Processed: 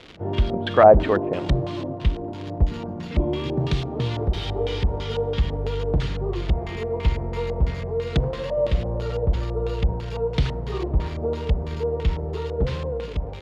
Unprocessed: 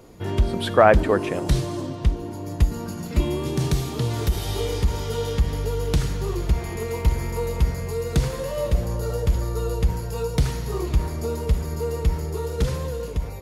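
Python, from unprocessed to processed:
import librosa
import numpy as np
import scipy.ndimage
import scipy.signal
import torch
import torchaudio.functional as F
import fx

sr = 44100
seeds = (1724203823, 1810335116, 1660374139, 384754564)

y = fx.dmg_crackle(x, sr, seeds[0], per_s=300.0, level_db=-29.0)
y = fx.filter_lfo_lowpass(y, sr, shape='square', hz=3.0, low_hz=690.0, high_hz=3300.0, q=2.0)
y = y * 10.0 ** (-1.0 / 20.0)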